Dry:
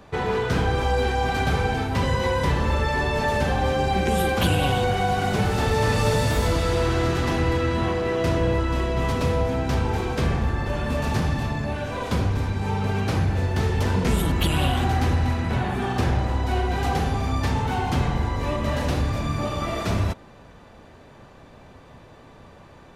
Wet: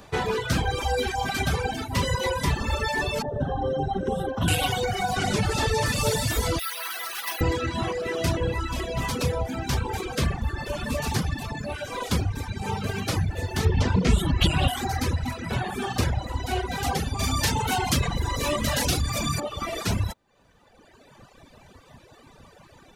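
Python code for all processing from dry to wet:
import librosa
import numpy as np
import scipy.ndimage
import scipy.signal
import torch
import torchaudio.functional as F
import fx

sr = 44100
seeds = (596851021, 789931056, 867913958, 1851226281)

y = fx.chain(x, sr, fx.moving_average(points=19),
    fx.comb(ms=7.3, depth=0.41), at=(3.22, 4.48))
y = fx.chain(y, sr, fx.lowpass(hz=9800.0, slope=12),
    fx.env_flatten(amount_pct=50), at=(5.16, 5.86))
y = fx.chain(y, sr, fx.highpass(hz=1000.0, slope=12),
    fx.resample_bad(factor=3, down='filtered', up='hold'), at=(6.59, 7.41))
y = fx.chain(y, sr, fx.lowpass(hz=5700.0, slope=12),
    fx.low_shelf(hz=330.0, db=5.5), at=(13.65, 14.68))
y = fx.chain(y, sr, fx.high_shelf(hz=3400.0, db=7.5),
    fx.env_flatten(amount_pct=50), at=(17.19, 19.4))
y = fx.dereverb_blind(y, sr, rt60_s=0.56)
y = fx.high_shelf(y, sr, hz=3700.0, db=10.5)
y = fx.dereverb_blind(y, sr, rt60_s=1.9)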